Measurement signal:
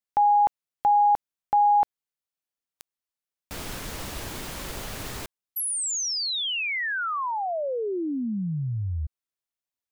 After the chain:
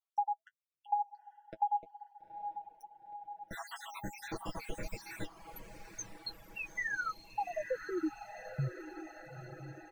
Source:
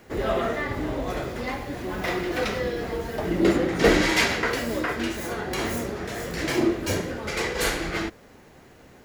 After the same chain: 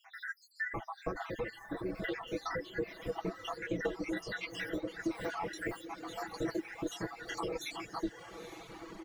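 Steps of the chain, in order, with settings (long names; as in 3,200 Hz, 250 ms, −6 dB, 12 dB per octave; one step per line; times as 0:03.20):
time-frequency cells dropped at random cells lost 77%
dynamic equaliser 170 Hz, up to −5 dB, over −45 dBFS, Q 0.98
flanger 1.4 Hz, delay 8.4 ms, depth 2.6 ms, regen +31%
downward compressor 12 to 1, threshold −38 dBFS
high-shelf EQ 3,900 Hz −12 dB
comb filter 6.1 ms, depth 86%
feedback delay with all-pass diffusion 918 ms, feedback 63%, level −9 dB
reverb reduction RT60 0.73 s
level +3.5 dB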